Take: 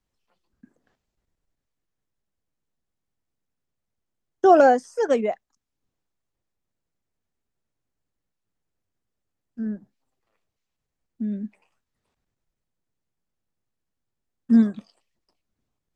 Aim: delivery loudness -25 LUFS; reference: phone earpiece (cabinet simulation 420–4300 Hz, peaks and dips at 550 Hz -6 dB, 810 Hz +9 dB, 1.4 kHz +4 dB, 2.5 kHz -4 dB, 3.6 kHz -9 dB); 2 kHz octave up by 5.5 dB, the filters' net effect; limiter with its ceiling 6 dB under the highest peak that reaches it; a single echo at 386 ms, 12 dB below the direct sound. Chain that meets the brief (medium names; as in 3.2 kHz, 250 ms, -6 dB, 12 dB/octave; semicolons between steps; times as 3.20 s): peaking EQ 2 kHz +5 dB; peak limiter -9 dBFS; cabinet simulation 420–4300 Hz, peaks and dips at 550 Hz -6 dB, 810 Hz +9 dB, 1.4 kHz +4 dB, 2.5 kHz -4 dB, 3.6 kHz -9 dB; delay 386 ms -12 dB; trim -4 dB